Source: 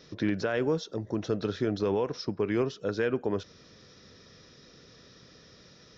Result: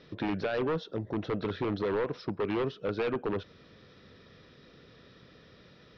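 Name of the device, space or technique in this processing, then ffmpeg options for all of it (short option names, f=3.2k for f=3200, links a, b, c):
synthesiser wavefolder: -af "aeval=exprs='0.0668*(abs(mod(val(0)/0.0668+3,4)-2)-1)':c=same,lowpass=f=3.8k:w=0.5412,lowpass=f=3.8k:w=1.3066"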